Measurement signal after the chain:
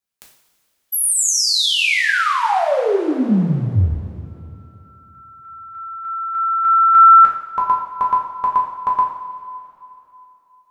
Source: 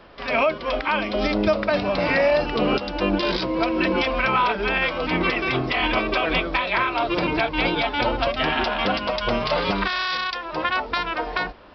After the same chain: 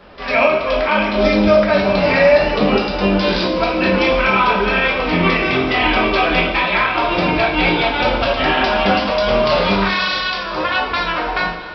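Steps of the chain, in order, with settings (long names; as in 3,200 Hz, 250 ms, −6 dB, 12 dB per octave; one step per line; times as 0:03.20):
coupled-rooms reverb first 0.59 s, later 3 s, from −14 dB, DRR −3.5 dB
level +1.5 dB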